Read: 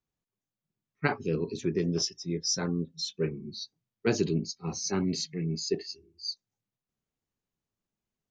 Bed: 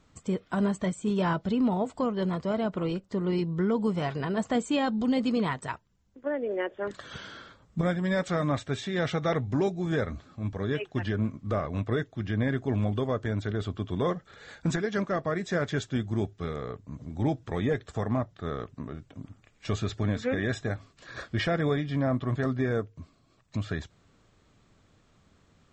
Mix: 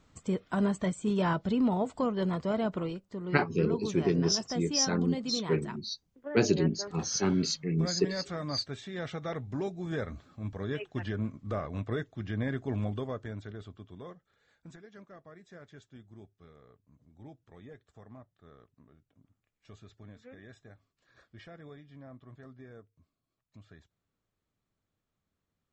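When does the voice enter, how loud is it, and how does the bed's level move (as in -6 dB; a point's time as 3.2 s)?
2.30 s, +1.5 dB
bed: 2.76 s -1.5 dB
2.99 s -9 dB
9.35 s -9 dB
10.2 s -5 dB
12.86 s -5 dB
14.44 s -22.5 dB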